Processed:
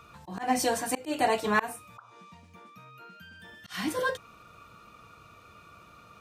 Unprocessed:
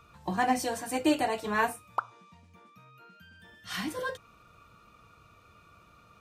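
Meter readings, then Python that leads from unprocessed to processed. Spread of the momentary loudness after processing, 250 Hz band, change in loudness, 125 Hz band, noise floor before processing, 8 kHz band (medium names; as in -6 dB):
22 LU, -2.0 dB, +1.5 dB, -0.5 dB, -59 dBFS, +4.0 dB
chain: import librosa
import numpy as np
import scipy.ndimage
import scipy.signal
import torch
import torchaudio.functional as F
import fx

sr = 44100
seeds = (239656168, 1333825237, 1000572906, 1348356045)

y = fx.low_shelf(x, sr, hz=89.0, db=-7.5)
y = fx.auto_swell(y, sr, attack_ms=224.0)
y = F.gain(torch.from_numpy(y), 5.5).numpy()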